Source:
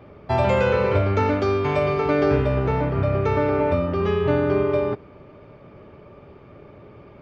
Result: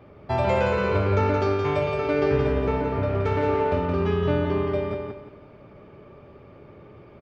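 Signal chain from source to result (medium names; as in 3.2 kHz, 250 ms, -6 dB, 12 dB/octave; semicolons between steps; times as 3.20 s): 3.08–4.04 s: self-modulated delay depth 0.1 ms; feedback delay 172 ms, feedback 32%, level -4.5 dB; trim -3.5 dB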